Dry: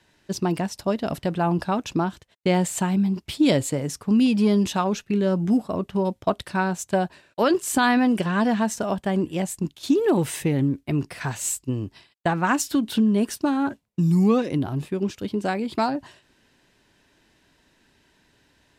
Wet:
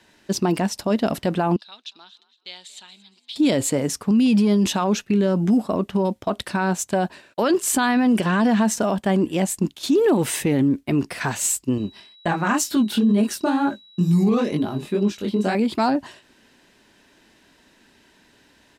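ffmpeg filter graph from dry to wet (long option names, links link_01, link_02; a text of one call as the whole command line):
ffmpeg -i in.wav -filter_complex "[0:a]asettb=1/sr,asplit=3[link_01][link_02][link_03];[link_01]atrim=end=1.564[link_04];[link_02]atrim=start=1.56:end=3.36,asetpts=PTS-STARTPTS,afade=type=in:duration=0.004:curve=qsin,afade=type=out:start_time=1.796:duration=0.004:curve=qsin,bandpass=frequency=3800:width_type=q:width=6.7,asplit=4[link_05][link_06][link_07][link_08];[link_06]adelay=231,afreqshift=46,volume=-20dB[link_09];[link_07]adelay=462,afreqshift=92,volume=-26.7dB[link_10];[link_08]adelay=693,afreqshift=138,volume=-33.5dB[link_11];[link_05][link_09][link_10][link_11]amix=inputs=4:normalize=0,atrim=end_sample=79380[link_12];[link_03]atrim=start=3.356[link_13];[link_04][link_12]acrossfade=duration=0.004:curve1=hsin:curve2=qsin[link_14];[link_14][link_13]acrossfade=duration=0.004:curve1=qsin:curve2=hsin,asettb=1/sr,asplit=3[link_15][link_16][link_17];[link_15]atrim=end=11.784[link_18];[link_16]atrim=start=11.78:end=15.55,asetpts=PTS-STARTPTS,afade=type=in:duration=0.004:curve=qsin,afade=type=out:start_time=3.766:duration=0.004:curve=qsin,aecho=1:1:4.9:0.33,atrim=end_sample=166257,flanger=delay=18:depth=7.7:speed=2.1,aeval=exprs='val(0)+0.002*sin(2*PI*3900*n/s)':channel_layout=same[link_19];[link_17]atrim=start=15.546[link_20];[link_18][link_19]acrossfade=duration=0.004:curve1=hsin:curve2=qsin[link_21];[link_21][link_20]acrossfade=duration=0.004:curve1=qsin:curve2=hsin,firequalizer=gain_entry='entry(150,0);entry(210,8);entry(300,6)':delay=0.05:min_phase=1,alimiter=limit=-11.5dB:level=0:latency=1:release=27" out.wav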